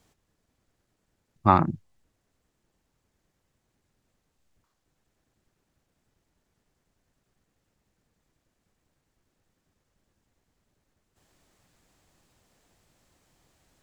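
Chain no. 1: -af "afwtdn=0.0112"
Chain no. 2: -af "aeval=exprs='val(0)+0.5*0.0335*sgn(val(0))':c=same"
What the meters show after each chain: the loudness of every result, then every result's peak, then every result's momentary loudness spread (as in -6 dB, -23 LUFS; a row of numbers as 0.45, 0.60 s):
-23.5, -33.0 LUFS; -2.0, -2.0 dBFS; 14, 2 LU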